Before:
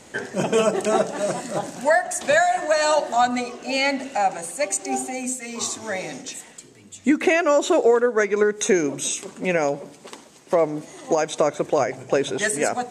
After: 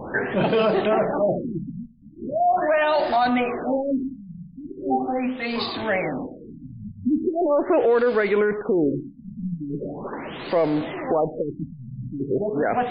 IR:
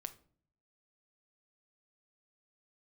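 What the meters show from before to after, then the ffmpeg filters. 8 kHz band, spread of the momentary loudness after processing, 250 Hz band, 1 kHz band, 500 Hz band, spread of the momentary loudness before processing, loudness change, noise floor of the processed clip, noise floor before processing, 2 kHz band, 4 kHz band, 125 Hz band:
below −40 dB, 17 LU, +1.5 dB, −1.0 dB, −1.0 dB, 10 LU, −1.0 dB, −43 dBFS, −48 dBFS, −4.0 dB, −4.5 dB, +4.0 dB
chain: -filter_complex "[0:a]aeval=exprs='val(0)+0.5*0.0316*sgn(val(0))':channel_layout=same,alimiter=limit=-15dB:level=0:latency=1:release=17,asplit=2[link_01][link_02];[1:a]atrim=start_sample=2205[link_03];[link_02][link_03]afir=irnorm=-1:irlink=0,volume=-4dB[link_04];[link_01][link_04]amix=inputs=2:normalize=0,afftfilt=real='re*lt(b*sr/1024,230*pow(5100/230,0.5+0.5*sin(2*PI*0.4*pts/sr)))':imag='im*lt(b*sr/1024,230*pow(5100/230,0.5+0.5*sin(2*PI*0.4*pts/sr)))':win_size=1024:overlap=0.75"

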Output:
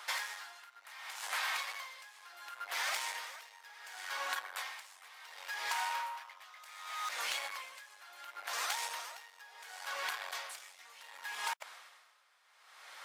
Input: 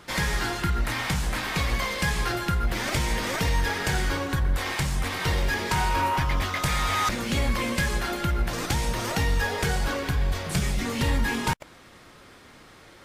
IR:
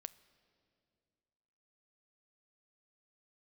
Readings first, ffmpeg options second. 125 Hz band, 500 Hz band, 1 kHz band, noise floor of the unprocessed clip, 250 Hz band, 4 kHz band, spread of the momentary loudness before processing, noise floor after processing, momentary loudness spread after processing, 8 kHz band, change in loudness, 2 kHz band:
below −40 dB, −21.5 dB, −12.0 dB, −50 dBFS, below −40 dB, −10.0 dB, 3 LU, −65 dBFS, 17 LU, −10.0 dB, −13.0 dB, −11.5 dB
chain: -af "asoftclip=type=tanh:threshold=-23dB,highpass=frequency=760:width=0.5412,highpass=frequency=760:width=1.3066,acompressor=threshold=-34dB:ratio=6,aeval=exprs='val(0)*pow(10,-20*(0.5-0.5*cos(2*PI*0.69*n/s))/20)':channel_layout=same,volume=2dB"

